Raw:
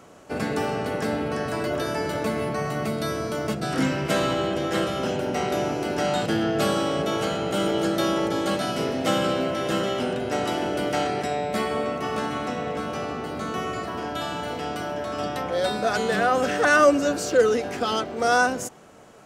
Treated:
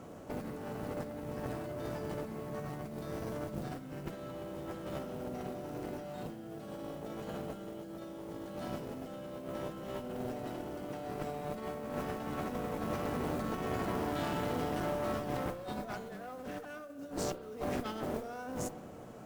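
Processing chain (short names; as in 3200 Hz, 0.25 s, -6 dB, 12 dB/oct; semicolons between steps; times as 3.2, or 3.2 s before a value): tilt shelf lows +6.5 dB, about 840 Hz; notch 410 Hz, Q 12; limiter -13 dBFS, peak gain reduction 8 dB; negative-ratio compressor -28 dBFS, ratio -0.5; modulation noise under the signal 22 dB; one-sided clip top -34.5 dBFS; reverb RT60 1.5 s, pre-delay 32 ms, DRR 11 dB; gain -8 dB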